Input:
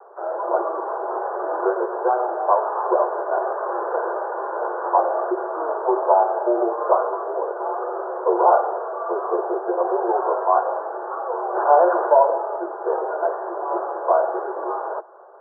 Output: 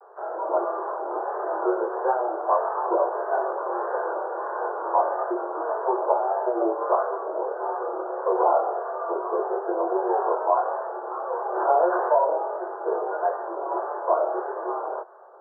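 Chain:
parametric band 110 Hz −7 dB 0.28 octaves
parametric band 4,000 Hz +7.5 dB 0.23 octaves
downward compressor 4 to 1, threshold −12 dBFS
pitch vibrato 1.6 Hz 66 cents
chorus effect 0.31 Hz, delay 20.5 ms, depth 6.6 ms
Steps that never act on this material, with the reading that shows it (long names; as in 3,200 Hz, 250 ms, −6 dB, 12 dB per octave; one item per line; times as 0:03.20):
parametric band 110 Hz: nothing at its input below 300 Hz
parametric band 4,000 Hz: nothing at its input above 1,600 Hz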